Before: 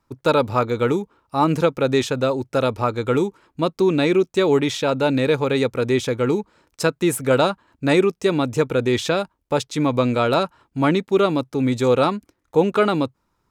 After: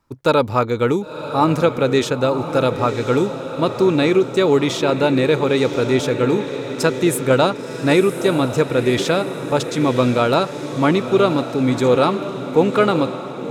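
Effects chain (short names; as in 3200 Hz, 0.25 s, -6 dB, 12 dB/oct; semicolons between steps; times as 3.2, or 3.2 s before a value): diffused feedback echo 1.021 s, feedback 54%, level -9.5 dB; gain +2 dB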